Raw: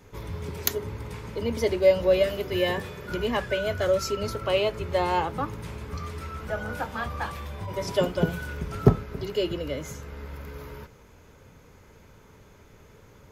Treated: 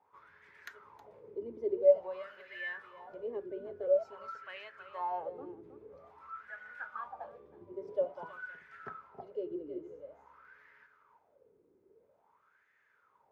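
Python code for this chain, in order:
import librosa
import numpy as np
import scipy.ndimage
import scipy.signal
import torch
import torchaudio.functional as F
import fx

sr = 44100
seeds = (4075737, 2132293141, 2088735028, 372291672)

y = x + 10.0 ** (-9.5 / 20.0) * np.pad(x, (int(318 * sr / 1000.0), 0))[:len(x)]
y = fx.wah_lfo(y, sr, hz=0.49, low_hz=350.0, high_hz=1800.0, q=7.9)
y = F.gain(torch.from_numpy(y), -2.0).numpy()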